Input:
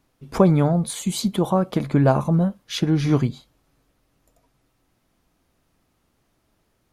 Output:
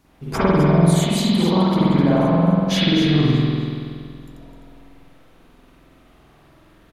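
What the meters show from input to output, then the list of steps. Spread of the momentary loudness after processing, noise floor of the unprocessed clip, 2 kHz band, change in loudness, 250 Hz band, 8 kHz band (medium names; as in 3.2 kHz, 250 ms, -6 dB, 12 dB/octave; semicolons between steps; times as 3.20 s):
12 LU, -69 dBFS, +8.0 dB, +3.5 dB, +5.0 dB, +1.0 dB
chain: compression 12:1, threshold -29 dBFS, peak gain reduction 19 dB; on a send: delay 256 ms -9 dB; on the sum: spring tank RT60 2.1 s, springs 47 ms, chirp 25 ms, DRR -10 dB; trim +6 dB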